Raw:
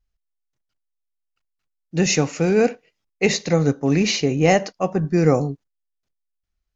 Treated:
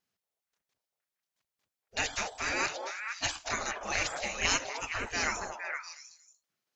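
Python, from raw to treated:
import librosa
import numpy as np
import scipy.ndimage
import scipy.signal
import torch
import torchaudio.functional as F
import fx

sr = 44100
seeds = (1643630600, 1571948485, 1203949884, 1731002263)

y = fx.spec_gate(x, sr, threshold_db=-25, keep='weak')
y = fx.echo_stepped(y, sr, ms=233, hz=640.0, octaves=1.4, feedback_pct=70, wet_db=-0.5)
y = F.gain(torch.from_numpy(y), 4.0).numpy()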